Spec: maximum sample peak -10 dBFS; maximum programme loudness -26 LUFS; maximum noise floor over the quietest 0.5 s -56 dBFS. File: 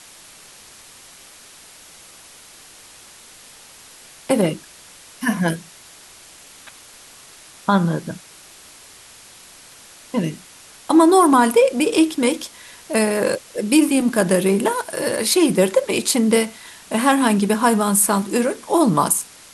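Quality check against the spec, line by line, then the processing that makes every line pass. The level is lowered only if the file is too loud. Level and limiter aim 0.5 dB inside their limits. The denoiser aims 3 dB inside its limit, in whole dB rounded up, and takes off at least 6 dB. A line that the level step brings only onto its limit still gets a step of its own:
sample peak -4.5 dBFS: fail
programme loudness -18.0 LUFS: fail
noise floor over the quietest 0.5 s -44 dBFS: fail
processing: noise reduction 7 dB, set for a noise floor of -44 dBFS; trim -8.5 dB

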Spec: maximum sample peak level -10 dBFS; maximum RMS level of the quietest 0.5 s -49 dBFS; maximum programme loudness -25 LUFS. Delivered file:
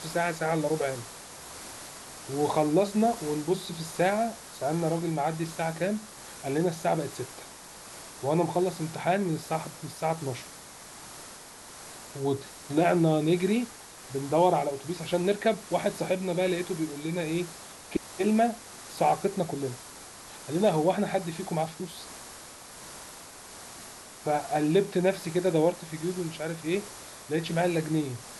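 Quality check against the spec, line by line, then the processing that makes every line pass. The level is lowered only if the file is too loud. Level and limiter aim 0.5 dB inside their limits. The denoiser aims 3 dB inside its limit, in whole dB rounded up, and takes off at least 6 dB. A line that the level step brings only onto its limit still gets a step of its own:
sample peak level -10.5 dBFS: pass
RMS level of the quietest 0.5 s -46 dBFS: fail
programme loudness -28.5 LUFS: pass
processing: noise reduction 6 dB, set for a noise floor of -46 dBFS

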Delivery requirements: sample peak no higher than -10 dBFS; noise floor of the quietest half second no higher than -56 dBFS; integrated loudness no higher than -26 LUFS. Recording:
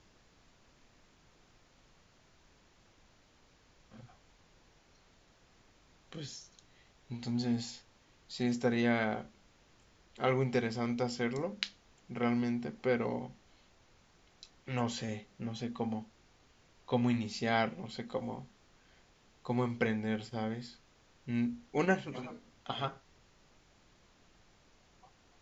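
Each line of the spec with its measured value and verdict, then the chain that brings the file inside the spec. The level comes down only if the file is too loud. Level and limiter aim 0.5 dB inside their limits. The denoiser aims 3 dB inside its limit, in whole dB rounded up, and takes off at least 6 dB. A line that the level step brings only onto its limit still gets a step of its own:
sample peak -11.5 dBFS: pass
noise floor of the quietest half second -65 dBFS: pass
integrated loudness -35.5 LUFS: pass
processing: none needed

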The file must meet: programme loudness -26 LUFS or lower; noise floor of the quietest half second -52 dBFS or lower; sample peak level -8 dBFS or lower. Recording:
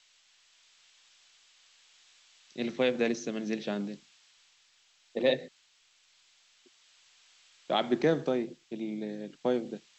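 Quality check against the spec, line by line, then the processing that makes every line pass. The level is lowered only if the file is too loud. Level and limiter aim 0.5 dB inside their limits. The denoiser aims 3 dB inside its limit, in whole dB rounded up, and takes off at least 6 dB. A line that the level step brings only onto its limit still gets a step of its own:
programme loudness -31.5 LUFS: pass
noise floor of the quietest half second -66 dBFS: pass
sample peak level -13.5 dBFS: pass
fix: none needed

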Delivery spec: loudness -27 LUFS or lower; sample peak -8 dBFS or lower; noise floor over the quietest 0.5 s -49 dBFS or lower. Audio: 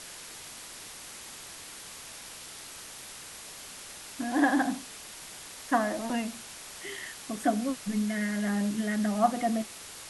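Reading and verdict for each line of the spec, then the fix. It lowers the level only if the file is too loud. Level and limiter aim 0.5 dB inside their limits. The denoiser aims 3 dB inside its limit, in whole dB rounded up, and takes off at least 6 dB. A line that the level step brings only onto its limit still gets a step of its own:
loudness -32.5 LUFS: pass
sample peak -11.0 dBFS: pass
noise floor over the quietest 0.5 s -45 dBFS: fail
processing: noise reduction 7 dB, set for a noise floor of -45 dBFS

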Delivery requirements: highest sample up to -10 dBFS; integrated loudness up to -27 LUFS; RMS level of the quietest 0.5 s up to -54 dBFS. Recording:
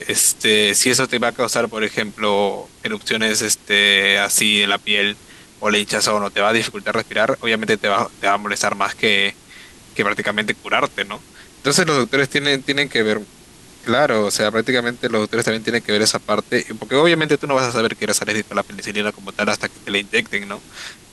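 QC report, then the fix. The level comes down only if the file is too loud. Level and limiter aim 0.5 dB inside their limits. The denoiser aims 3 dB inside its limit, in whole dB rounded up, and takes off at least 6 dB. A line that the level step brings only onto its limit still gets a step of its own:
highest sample -3.0 dBFS: fail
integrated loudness -17.5 LUFS: fail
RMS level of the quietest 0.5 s -45 dBFS: fail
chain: trim -10 dB

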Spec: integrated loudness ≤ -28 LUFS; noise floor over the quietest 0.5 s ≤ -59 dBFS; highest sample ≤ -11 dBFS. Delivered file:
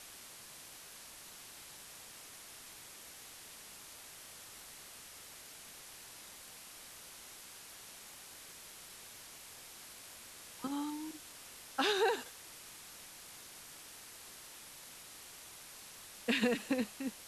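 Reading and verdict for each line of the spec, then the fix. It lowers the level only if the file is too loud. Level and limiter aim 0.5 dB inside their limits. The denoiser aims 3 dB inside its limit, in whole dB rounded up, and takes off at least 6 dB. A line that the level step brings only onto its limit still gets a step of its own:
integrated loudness -43.0 LUFS: pass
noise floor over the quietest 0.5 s -53 dBFS: fail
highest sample -18.0 dBFS: pass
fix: noise reduction 9 dB, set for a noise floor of -53 dBFS

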